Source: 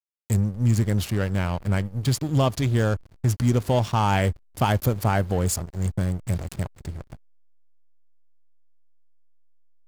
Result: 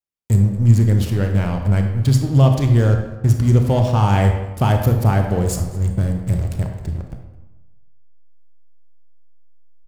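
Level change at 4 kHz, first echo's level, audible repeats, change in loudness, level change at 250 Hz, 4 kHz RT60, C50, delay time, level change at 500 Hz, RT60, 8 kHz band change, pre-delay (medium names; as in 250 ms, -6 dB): 0.0 dB, -20.5 dB, 1, +7.0 dB, +5.5 dB, 0.70 s, 5.5 dB, 217 ms, +4.0 dB, 1.1 s, -0.5 dB, 27 ms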